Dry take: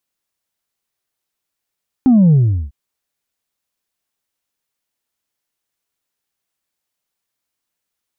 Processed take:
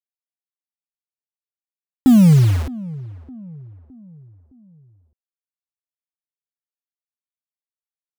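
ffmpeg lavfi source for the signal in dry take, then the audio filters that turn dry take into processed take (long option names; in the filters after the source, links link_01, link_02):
-f lavfi -i "aevalsrc='0.447*clip((0.65-t)/0.39,0,1)*tanh(1.19*sin(2*PI*270*0.65/log(65/270)*(exp(log(65/270)*t/0.65)-1)))/tanh(1.19)':duration=0.65:sample_rate=44100"
-filter_complex "[0:a]acrusher=bits=4:mix=0:aa=0.000001,asplit=2[link_01][link_02];[link_02]adelay=613,lowpass=frequency=890:poles=1,volume=-19dB,asplit=2[link_03][link_04];[link_04]adelay=613,lowpass=frequency=890:poles=1,volume=0.47,asplit=2[link_05][link_06];[link_06]adelay=613,lowpass=frequency=890:poles=1,volume=0.47,asplit=2[link_07][link_08];[link_08]adelay=613,lowpass=frequency=890:poles=1,volume=0.47[link_09];[link_01][link_03][link_05][link_07][link_09]amix=inputs=5:normalize=0"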